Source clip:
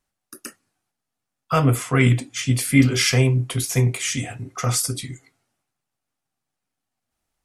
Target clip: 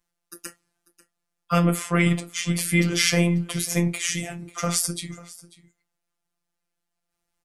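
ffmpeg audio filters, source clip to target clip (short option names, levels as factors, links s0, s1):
-af "aecho=1:1:542:0.1,afftfilt=real='hypot(re,im)*cos(PI*b)':imag='0':win_size=1024:overlap=0.75,volume=1.26"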